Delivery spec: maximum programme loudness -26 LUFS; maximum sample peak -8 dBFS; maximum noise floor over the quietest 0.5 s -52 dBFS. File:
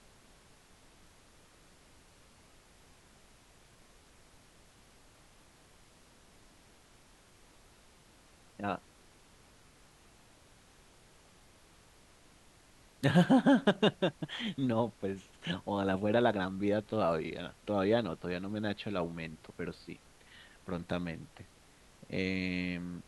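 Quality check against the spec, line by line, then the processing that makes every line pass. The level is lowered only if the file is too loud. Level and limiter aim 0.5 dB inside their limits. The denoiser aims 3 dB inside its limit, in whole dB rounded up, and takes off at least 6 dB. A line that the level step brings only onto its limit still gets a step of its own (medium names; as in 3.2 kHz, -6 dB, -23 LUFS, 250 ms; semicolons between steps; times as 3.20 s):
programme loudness -33.0 LUFS: pass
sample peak -13.0 dBFS: pass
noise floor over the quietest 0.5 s -61 dBFS: pass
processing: none needed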